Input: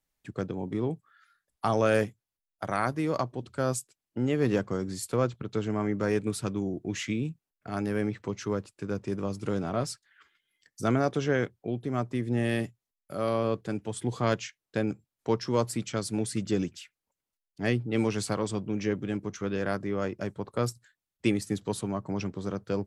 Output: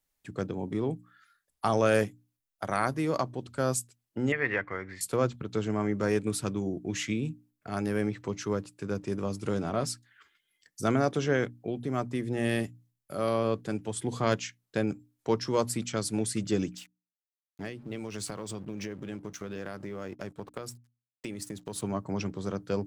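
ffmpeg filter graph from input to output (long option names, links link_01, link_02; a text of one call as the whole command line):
ffmpeg -i in.wav -filter_complex "[0:a]asettb=1/sr,asplit=3[link_01][link_02][link_03];[link_01]atrim=end=4.324[link_04];[link_02]atrim=start=4.32:end=5.01,asetpts=PTS-STARTPTS,afade=type=in:duration=0.004:curve=qsin,afade=type=out:start_time=0.686:duration=0.004:curve=qsin,lowpass=frequency=2000:width_type=q:width=6.3,equalizer=frequency=200:width_type=o:width=2.3:gain=-13[link_05];[link_03]atrim=start=5.006[link_06];[link_04][link_05]acrossfade=duration=0.004:curve1=hsin:curve2=qsin[link_07];[link_07][link_06]acrossfade=duration=0.004:curve1=qsin:curve2=hsin,asettb=1/sr,asplit=3[link_08][link_09][link_10];[link_08]atrim=end=16.774[link_11];[link_09]atrim=start=16.77:end=21.82,asetpts=PTS-STARTPTS,afade=type=in:duration=0.004:curve=qsin,afade=type=out:start_time=5.046:duration=0.004:curve=qsin,aeval=exprs='sgn(val(0))*max(abs(val(0))-0.00211,0)':channel_layout=same,acompressor=threshold=-32dB:ratio=16:attack=3.2:release=140:knee=1:detection=peak[link_12];[link_10]atrim=start=21.816[link_13];[link_11][link_12]acrossfade=duration=0.004:curve1=hsin:curve2=qsin[link_14];[link_14][link_13]acrossfade=duration=0.004:curve1=qsin:curve2=hsin,highshelf=frequency=6600:gain=5,bandreject=frequency=60:width_type=h:width=6,bandreject=frequency=120:width_type=h:width=6,bandreject=frequency=180:width_type=h:width=6,bandreject=frequency=240:width_type=h:width=6,bandreject=frequency=300:width_type=h:width=6" out.wav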